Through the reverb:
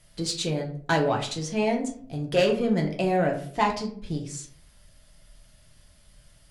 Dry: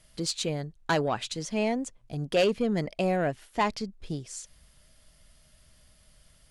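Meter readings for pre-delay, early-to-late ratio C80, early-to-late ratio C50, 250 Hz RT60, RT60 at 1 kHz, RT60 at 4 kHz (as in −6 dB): 5 ms, 13.0 dB, 9.0 dB, 0.65 s, 0.50 s, 0.30 s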